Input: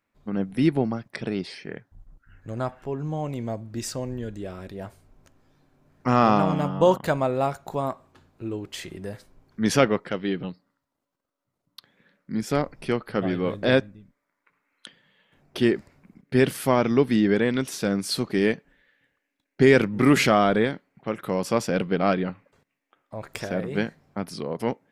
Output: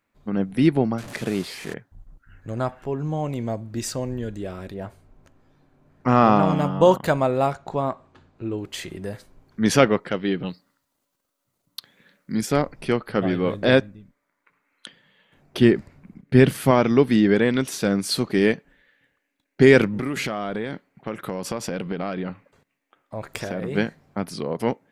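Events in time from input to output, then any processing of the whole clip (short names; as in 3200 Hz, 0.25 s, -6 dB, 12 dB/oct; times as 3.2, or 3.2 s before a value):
0.98–1.74 delta modulation 64 kbps, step -35 dBFS
4.74–6.43 high shelf 3700 Hz -7.5 dB
7.53–8.58 air absorption 81 m
10.45–12.45 high shelf 2400 Hz -> 4100 Hz +11 dB
15.59–16.71 tone controls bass +6 dB, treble -3 dB
19.89–23.62 compressor 8:1, threshold -26 dBFS
whole clip: notch 5300 Hz, Q 23; gain +3 dB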